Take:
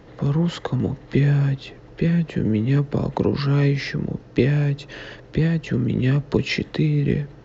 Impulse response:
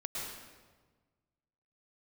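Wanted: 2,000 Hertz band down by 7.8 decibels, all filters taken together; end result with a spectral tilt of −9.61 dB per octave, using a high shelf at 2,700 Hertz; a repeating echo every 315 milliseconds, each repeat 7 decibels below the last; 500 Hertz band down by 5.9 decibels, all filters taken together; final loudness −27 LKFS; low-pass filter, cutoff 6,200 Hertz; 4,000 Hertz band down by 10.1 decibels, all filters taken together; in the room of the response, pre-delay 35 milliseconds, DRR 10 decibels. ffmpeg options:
-filter_complex "[0:a]lowpass=6200,equalizer=frequency=500:width_type=o:gain=-7.5,equalizer=frequency=2000:width_type=o:gain=-5,highshelf=frequency=2700:gain=-5,equalizer=frequency=4000:width_type=o:gain=-6.5,aecho=1:1:315|630|945|1260|1575:0.447|0.201|0.0905|0.0407|0.0183,asplit=2[link_01][link_02];[1:a]atrim=start_sample=2205,adelay=35[link_03];[link_02][link_03]afir=irnorm=-1:irlink=0,volume=-12dB[link_04];[link_01][link_04]amix=inputs=2:normalize=0,volume=-5.5dB"

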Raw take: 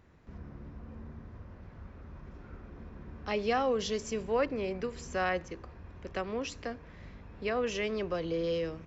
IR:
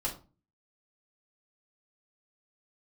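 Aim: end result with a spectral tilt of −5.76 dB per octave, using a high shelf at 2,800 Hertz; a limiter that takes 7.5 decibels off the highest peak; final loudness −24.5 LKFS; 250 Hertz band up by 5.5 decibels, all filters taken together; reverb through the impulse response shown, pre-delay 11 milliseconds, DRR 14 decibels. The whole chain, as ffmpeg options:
-filter_complex "[0:a]equalizer=frequency=250:width_type=o:gain=7,highshelf=frequency=2800:gain=-8.5,alimiter=level_in=0.5dB:limit=-24dB:level=0:latency=1,volume=-0.5dB,asplit=2[link_01][link_02];[1:a]atrim=start_sample=2205,adelay=11[link_03];[link_02][link_03]afir=irnorm=-1:irlink=0,volume=-18dB[link_04];[link_01][link_04]amix=inputs=2:normalize=0,volume=10.5dB"

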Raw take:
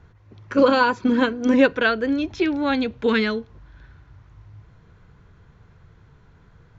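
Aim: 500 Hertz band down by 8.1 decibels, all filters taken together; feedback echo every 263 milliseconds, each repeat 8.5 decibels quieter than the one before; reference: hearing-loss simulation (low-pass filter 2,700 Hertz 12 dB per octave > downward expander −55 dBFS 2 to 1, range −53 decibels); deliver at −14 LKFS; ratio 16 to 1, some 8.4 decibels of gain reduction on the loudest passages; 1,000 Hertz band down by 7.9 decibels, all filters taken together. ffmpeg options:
ffmpeg -i in.wav -af "equalizer=frequency=500:width_type=o:gain=-7,equalizer=frequency=1000:width_type=o:gain=-8,acompressor=threshold=-24dB:ratio=16,lowpass=2700,aecho=1:1:263|526|789|1052:0.376|0.143|0.0543|0.0206,agate=range=-53dB:threshold=-55dB:ratio=2,volume=15.5dB" out.wav

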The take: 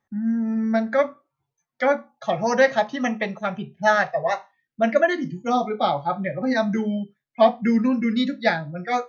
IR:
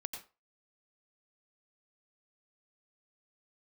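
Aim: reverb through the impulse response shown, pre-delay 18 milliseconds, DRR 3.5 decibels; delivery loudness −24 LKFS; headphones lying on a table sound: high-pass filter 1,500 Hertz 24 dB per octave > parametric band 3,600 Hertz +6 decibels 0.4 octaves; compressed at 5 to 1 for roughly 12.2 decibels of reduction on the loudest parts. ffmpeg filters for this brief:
-filter_complex "[0:a]acompressor=threshold=-25dB:ratio=5,asplit=2[link_01][link_02];[1:a]atrim=start_sample=2205,adelay=18[link_03];[link_02][link_03]afir=irnorm=-1:irlink=0,volume=-2.5dB[link_04];[link_01][link_04]amix=inputs=2:normalize=0,highpass=frequency=1500:width=0.5412,highpass=frequency=1500:width=1.3066,equalizer=frequency=3600:width_type=o:width=0.4:gain=6,volume=12.5dB"

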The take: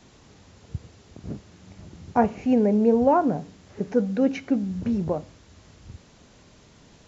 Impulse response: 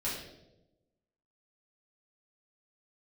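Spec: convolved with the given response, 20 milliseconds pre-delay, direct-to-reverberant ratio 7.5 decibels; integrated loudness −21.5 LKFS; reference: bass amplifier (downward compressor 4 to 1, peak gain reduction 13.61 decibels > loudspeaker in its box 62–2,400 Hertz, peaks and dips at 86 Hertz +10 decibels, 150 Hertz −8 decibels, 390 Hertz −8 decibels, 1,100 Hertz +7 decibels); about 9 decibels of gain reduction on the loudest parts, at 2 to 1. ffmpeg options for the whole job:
-filter_complex "[0:a]acompressor=threshold=-31dB:ratio=2,asplit=2[link_01][link_02];[1:a]atrim=start_sample=2205,adelay=20[link_03];[link_02][link_03]afir=irnorm=-1:irlink=0,volume=-12dB[link_04];[link_01][link_04]amix=inputs=2:normalize=0,acompressor=threshold=-37dB:ratio=4,highpass=frequency=62:width=0.5412,highpass=frequency=62:width=1.3066,equalizer=frequency=86:width_type=q:width=4:gain=10,equalizer=frequency=150:width_type=q:width=4:gain=-8,equalizer=frequency=390:width_type=q:width=4:gain=-8,equalizer=frequency=1100:width_type=q:width=4:gain=7,lowpass=frequency=2400:width=0.5412,lowpass=frequency=2400:width=1.3066,volume=20.5dB"

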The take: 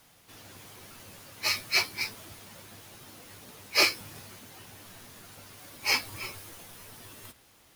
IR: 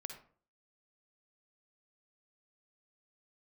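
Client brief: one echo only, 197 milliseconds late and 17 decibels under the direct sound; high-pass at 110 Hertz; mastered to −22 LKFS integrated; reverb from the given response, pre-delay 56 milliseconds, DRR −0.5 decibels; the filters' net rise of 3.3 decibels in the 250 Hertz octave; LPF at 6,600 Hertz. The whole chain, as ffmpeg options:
-filter_complex "[0:a]highpass=110,lowpass=6600,equalizer=frequency=250:width_type=o:gain=5,aecho=1:1:197:0.141,asplit=2[link_01][link_02];[1:a]atrim=start_sample=2205,adelay=56[link_03];[link_02][link_03]afir=irnorm=-1:irlink=0,volume=3.5dB[link_04];[link_01][link_04]amix=inputs=2:normalize=0,volume=3.5dB"

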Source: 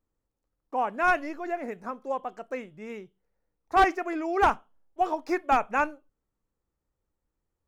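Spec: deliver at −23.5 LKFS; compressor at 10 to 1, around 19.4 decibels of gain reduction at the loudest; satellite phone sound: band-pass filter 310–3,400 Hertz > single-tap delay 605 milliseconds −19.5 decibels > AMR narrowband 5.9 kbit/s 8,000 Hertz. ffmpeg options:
ffmpeg -i in.wav -af "acompressor=threshold=-37dB:ratio=10,highpass=310,lowpass=3400,aecho=1:1:605:0.106,volume=20.5dB" -ar 8000 -c:a libopencore_amrnb -b:a 5900 out.amr

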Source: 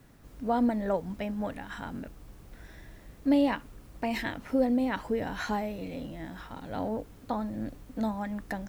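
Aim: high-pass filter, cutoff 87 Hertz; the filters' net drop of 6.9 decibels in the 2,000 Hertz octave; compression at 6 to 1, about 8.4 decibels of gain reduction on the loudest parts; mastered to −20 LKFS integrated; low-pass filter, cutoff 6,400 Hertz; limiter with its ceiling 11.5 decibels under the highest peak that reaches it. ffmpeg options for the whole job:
ffmpeg -i in.wav -af "highpass=87,lowpass=6400,equalizer=frequency=2000:width_type=o:gain=-9,acompressor=threshold=-29dB:ratio=6,volume=22.5dB,alimiter=limit=-11.5dB:level=0:latency=1" out.wav

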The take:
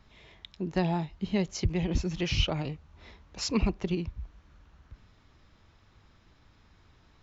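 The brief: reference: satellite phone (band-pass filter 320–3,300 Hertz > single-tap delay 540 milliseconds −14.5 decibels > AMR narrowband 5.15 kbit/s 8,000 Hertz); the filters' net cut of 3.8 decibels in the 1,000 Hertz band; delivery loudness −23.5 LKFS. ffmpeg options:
ffmpeg -i in.wav -af "highpass=320,lowpass=3300,equalizer=frequency=1000:width_type=o:gain=-5,aecho=1:1:540:0.188,volume=15.5dB" -ar 8000 -c:a libopencore_amrnb -b:a 5150 out.amr

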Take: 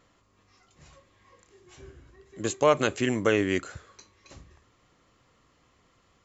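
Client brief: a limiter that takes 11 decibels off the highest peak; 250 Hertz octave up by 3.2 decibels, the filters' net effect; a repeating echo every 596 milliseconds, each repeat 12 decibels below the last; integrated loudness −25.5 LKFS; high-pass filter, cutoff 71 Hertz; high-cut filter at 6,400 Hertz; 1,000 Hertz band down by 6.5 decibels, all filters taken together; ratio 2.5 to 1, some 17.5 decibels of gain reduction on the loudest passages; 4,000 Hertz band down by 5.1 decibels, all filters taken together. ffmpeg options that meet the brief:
ffmpeg -i in.wav -af "highpass=71,lowpass=6400,equalizer=frequency=250:width_type=o:gain=4.5,equalizer=frequency=1000:width_type=o:gain=-8,equalizer=frequency=4000:width_type=o:gain=-6.5,acompressor=threshold=-46dB:ratio=2.5,alimiter=level_in=12.5dB:limit=-24dB:level=0:latency=1,volume=-12.5dB,aecho=1:1:596|1192|1788:0.251|0.0628|0.0157,volume=24.5dB" out.wav

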